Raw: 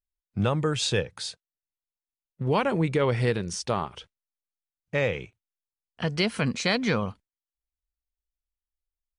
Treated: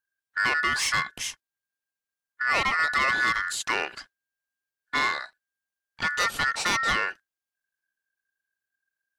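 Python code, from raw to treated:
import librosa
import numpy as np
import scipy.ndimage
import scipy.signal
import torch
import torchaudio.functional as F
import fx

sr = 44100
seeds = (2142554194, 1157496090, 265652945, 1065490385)

y = x * np.sin(2.0 * np.pi * 1600.0 * np.arange(len(x)) / sr)
y = 10.0 ** (-23.5 / 20.0) * np.tanh(y / 10.0 ** (-23.5 / 20.0))
y = F.gain(torch.from_numpy(y), 6.0).numpy()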